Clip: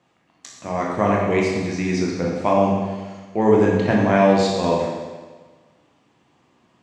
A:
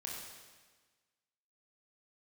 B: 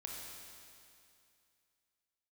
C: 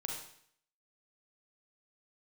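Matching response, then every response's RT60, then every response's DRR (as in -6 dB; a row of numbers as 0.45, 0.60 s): A; 1.4, 2.5, 0.60 s; -3.5, -2.0, -0.5 dB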